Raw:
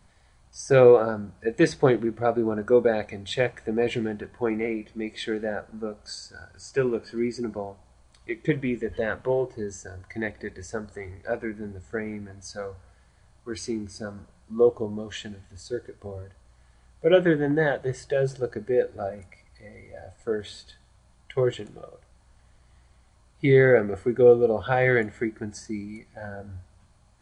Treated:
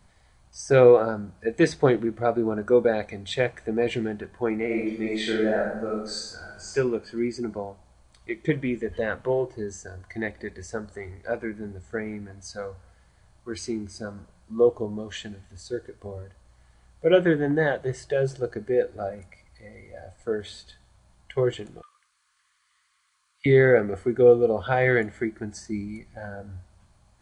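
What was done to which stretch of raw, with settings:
0:04.66–0:06.73: thrown reverb, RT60 0.81 s, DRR −4 dB
0:21.82–0:23.46: elliptic high-pass filter 1,100 Hz
0:25.72–0:26.21: low-shelf EQ 170 Hz +7 dB

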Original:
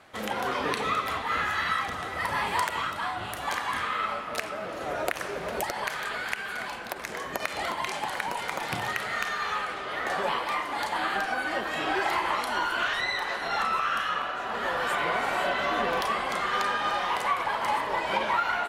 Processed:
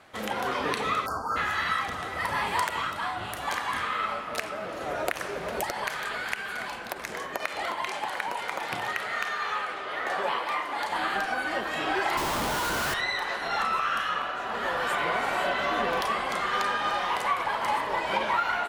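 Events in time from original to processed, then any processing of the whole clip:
0:01.06–0:01.36: time-frequency box erased 1,600–4,300 Hz
0:07.26–0:10.90: bass and treble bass −8 dB, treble −4 dB
0:12.17–0:12.94: comparator with hysteresis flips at −32 dBFS

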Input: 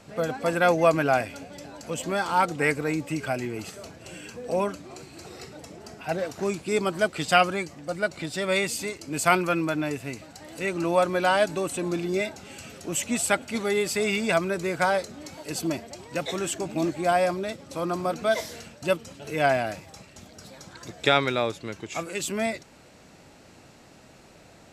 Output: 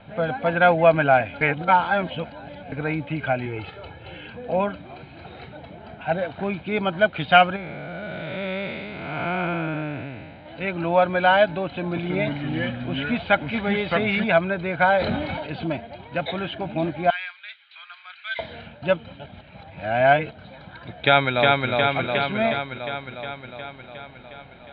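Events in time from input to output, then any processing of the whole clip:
0:01.41–0:02.72: reverse
0:03.46–0:04.27: comb filter 2.3 ms, depth 64%
0:07.56–0:10.46: spectrum smeared in time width 404 ms
0:11.66–0:14.24: delay with pitch and tempo change per echo 305 ms, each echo −3 semitones, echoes 2
0:14.89–0:15.64: level that may fall only so fast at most 26 dB per second
0:17.10–0:18.39: inverse Chebyshev high-pass filter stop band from 380 Hz, stop band 70 dB
0:19.26–0:20.31: reverse
0:20.98–0:21.70: delay throw 360 ms, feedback 70%, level −2 dB
whole clip: Butterworth low-pass 3,800 Hz 72 dB per octave; comb filter 1.3 ms, depth 49%; level +3 dB

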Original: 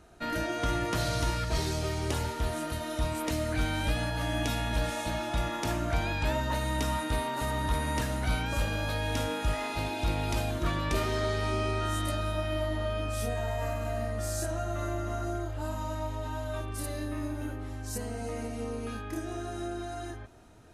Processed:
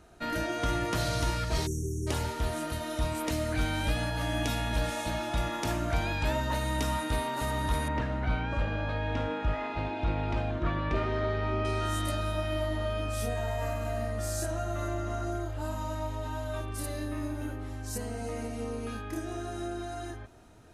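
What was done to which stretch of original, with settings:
0:01.67–0:02.07: time-frequency box erased 460–5,500 Hz
0:07.88–0:11.65: low-pass filter 2,300 Hz
0:14.88–0:15.32: low-pass filter 10,000 Hz

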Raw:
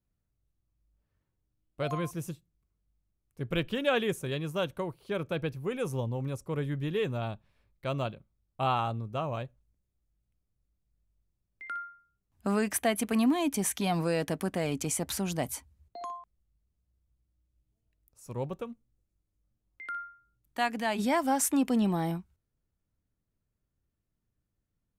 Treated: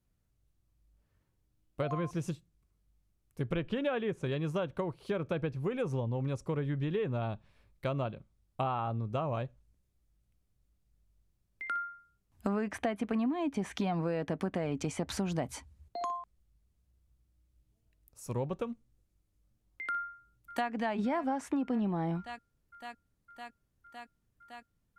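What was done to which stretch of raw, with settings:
0:19.92–0:20.70: delay throw 560 ms, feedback 85%, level −16.5 dB
whole clip: treble cut that deepens with the level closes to 2,900 Hz, closed at −26.5 dBFS; dynamic equaliser 3,400 Hz, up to −5 dB, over −46 dBFS, Q 0.7; downward compressor, threshold −34 dBFS; level +4.5 dB

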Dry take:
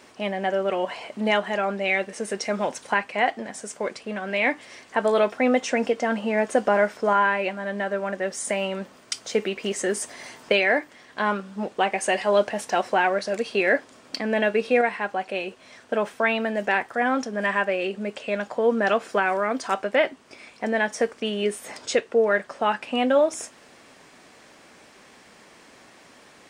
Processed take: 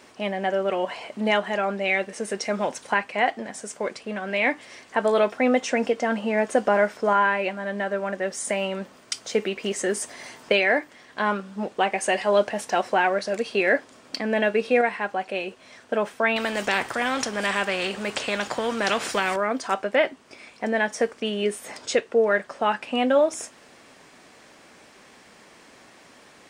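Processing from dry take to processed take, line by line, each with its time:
0:16.36–0:19.36: every bin compressed towards the loudest bin 2 to 1

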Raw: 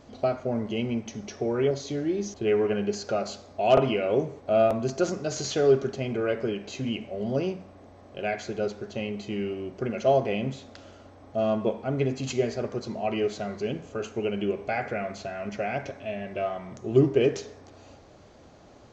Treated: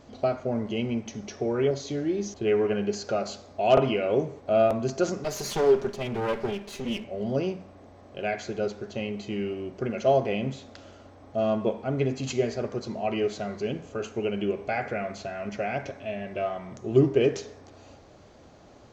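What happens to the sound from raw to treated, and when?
0:05.24–0:07.04: lower of the sound and its delayed copy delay 5 ms

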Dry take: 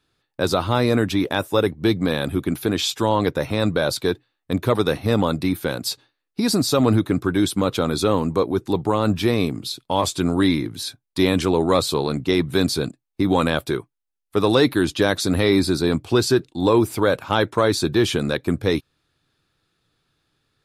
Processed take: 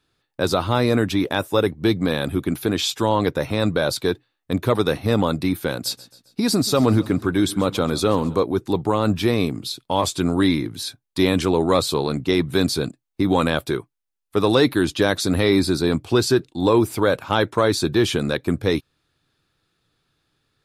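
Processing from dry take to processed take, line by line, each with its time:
0:05.72–0:08.40: repeating echo 133 ms, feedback 50%, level −19 dB

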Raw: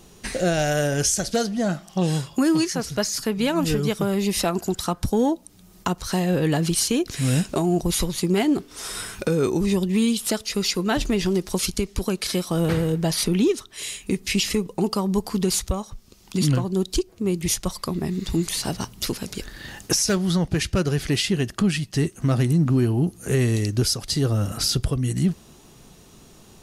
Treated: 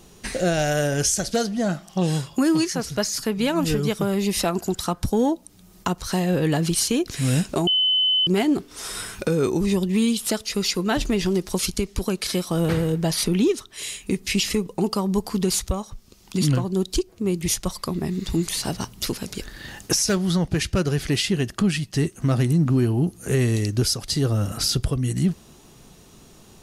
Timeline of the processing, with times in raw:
0:07.67–0:08.27: beep over 3,030 Hz −16.5 dBFS

